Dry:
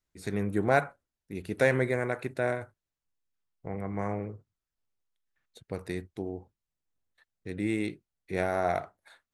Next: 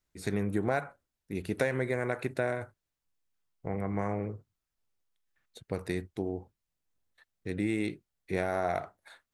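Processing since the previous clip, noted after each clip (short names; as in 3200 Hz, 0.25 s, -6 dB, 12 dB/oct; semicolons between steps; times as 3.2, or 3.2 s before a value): compressor 6:1, threshold -28 dBFS, peak gain reduction 10 dB; gain +2.5 dB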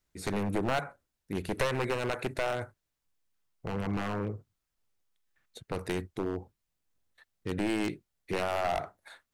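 one-sided fold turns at -26.5 dBFS; gain +2.5 dB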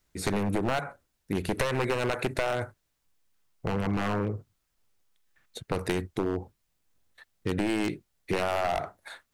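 compressor, threshold -31 dBFS, peak gain reduction 7 dB; gain +7 dB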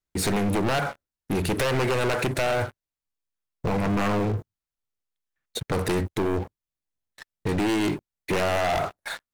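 sample leveller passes 5; gain -7 dB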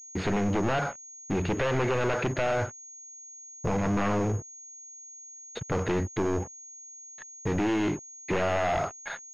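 pulse-width modulation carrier 6600 Hz; gain -2.5 dB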